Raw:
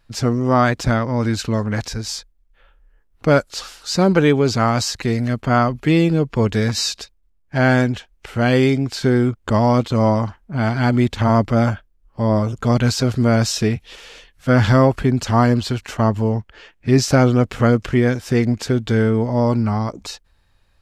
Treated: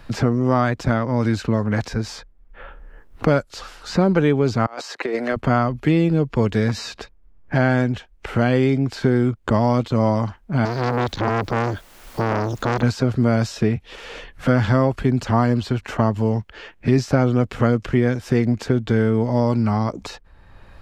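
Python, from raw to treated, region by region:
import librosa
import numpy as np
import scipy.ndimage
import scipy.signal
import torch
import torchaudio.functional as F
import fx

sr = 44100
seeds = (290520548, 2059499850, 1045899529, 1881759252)

y = fx.chain(x, sr, fx.highpass(hz=360.0, slope=24),
    fx.high_shelf(hz=6800.0, db=-6.0),
    fx.over_compress(threshold_db=-27.0, ratio=-0.5), at=(4.66, 5.36))
y = fx.chain(y, sr, fx.band_shelf(hz=4900.0, db=16.0, octaves=1.2),
    fx.quant_dither(seeds[0], bits=8, dither='triangular'),
    fx.transformer_sat(knee_hz=1700.0), at=(10.65, 12.83))
y = fx.high_shelf(y, sr, hz=3100.0, db=-8.5)
y = fx.band_squash(y, sr, depth_pct=70)
y = y * 10.0 ** (-2.0 / 20.0)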